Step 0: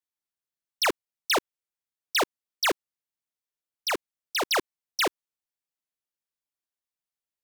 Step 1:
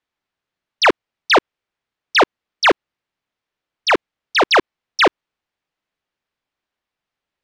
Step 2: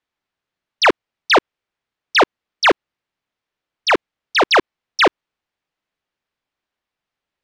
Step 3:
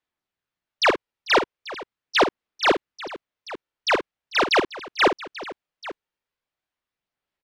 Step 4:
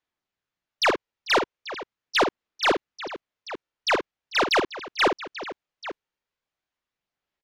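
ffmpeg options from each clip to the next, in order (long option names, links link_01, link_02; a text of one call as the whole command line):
ffmpeg -i in.wav -filter_complex "[0:a]lowpass=3100,asplit=2[link_01][link_02];[link_02]alimiter=level_in=4dB:limit=-24dB:level=0:latency=1:release=79,volume=-4dB,volume=1.5dB[link_03];[link_01][link_03]amix=inputs=2:normalize=0,volume=9dB" out.wav
ffmpeg -i in.wav -af anull out.wav
ffmpeg -i in.wav -filter_complex "[0:a]aphaser=in_gain=1:out_gain=1:delay=2.2:decay=0.23:speed=0.41:type=sinusoidal,asplit=2[link_01][link_02];[link_02]aecho=0:1:51|445|838:0.335|0.119|0.141[link_03];[link_01][link_03]amix=inputs=2:normalize=0,volume=-6dB" out.wav
ffmpeg -i in.wav -af "aresample=16000,aresample=44100,aeval=exprs='(tanh(5.62*val(0)+0.05)-tanh(0.05))/5.62':channel_layout=same" out.wav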